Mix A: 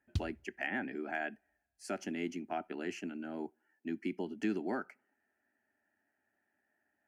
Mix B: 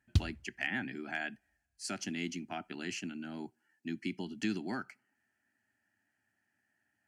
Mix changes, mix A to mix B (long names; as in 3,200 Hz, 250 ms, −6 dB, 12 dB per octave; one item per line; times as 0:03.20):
speech: add graphic EQ with 10 bands 125 Hz +11 dB, 500 Hz −10 dB, 4,000 Hz +11 dB, 8,000 Hz +7 dB
background +7.0 dB